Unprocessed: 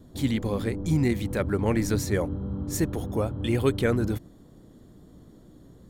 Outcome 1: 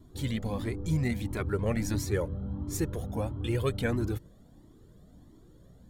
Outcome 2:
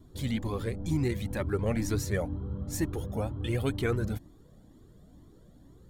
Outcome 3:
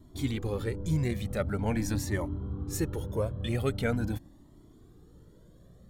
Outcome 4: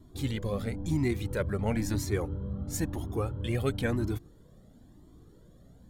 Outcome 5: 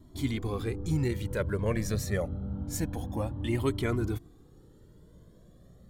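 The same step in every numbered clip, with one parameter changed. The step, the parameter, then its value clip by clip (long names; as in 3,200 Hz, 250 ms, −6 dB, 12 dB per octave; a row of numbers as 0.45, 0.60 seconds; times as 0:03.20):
flanger whose copies keep moving one way, speed: 1.5, 2.1, 0.44, 0.99, 0.27 Hertz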